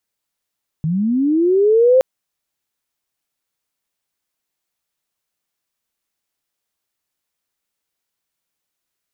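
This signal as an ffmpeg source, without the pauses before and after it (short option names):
-f lavfi -i "aevalsrc='pow(10,(-16+8.5*t/1.17)/20)*sin(2*PI*(150*t+380*t*t/(2*1.17)))':d=1.17:s=44100"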